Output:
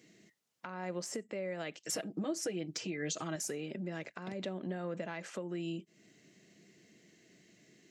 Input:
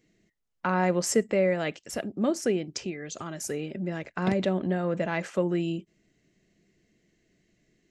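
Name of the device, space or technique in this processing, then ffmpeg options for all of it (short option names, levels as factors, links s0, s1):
broadcast voice chain: -filter_complex "[0:a]highpass=90,deesser=0.65,acompressor=threshold=0.00708:ratio=4,equalizer=f=5900:t=o:w=2.3:g=4,alimiter=level_in=2.82:limit=0.0631:level=0:latency=1:release=299,volume=0.355,highpass=130,asettb=1/sr,asplit=3[s0][s1][s2];[s0]atrim=end=1.834[s3];[s1]atrim=start=1.83:end=3.36,asetpts=PTS-STARTPTS,afade=t=in:d=0.004:c=qsin,afade=t=out:st=1.526:d=0.004:c=qsin,aecho=1:1:6.3:0.95,atrim=end_sample=67473[s4];[s2]atrim=start=3.356[s5];[s3][s4]acrossfade=d=0.004:c1=hsin:c2=qsin[s6];[s6][s5]acrossfade=d=0.004:c1=qsin:c2=hsin,volume=1.88"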